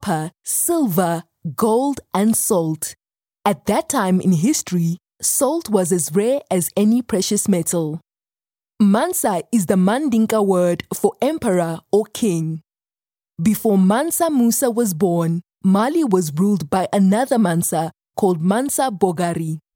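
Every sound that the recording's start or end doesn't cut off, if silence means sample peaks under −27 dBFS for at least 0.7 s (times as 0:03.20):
0:08.80–0:12.57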